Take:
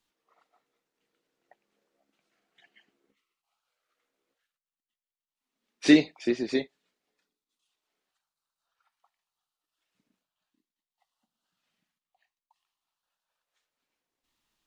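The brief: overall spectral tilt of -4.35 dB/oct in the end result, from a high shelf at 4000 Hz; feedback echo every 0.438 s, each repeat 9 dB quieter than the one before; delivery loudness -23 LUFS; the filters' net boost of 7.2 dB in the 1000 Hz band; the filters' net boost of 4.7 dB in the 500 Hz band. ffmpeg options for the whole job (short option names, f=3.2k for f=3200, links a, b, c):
-af "equalizer=f=500:t=o:g=5,equalizer=f=1k:t=o:g=8.5,highshelf=f=4k:g=-7,aecho=1:1:438|876|1314|1752:0.355|0.124|0.0435|0.0152,volume=0.5dB"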